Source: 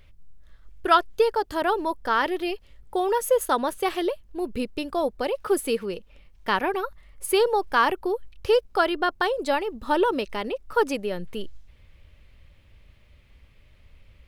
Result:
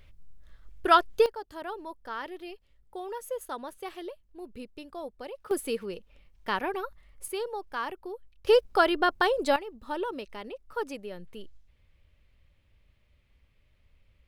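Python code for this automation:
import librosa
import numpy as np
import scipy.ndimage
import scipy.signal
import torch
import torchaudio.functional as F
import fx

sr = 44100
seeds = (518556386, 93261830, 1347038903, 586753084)

y = fx.gain(x, sr, db=fx.steps((0.0, -1.5), (1.26, -14.0), (5.51, -6.0), (7.28, -13.0), (8.47, -0.5), (9.56, -11.0)))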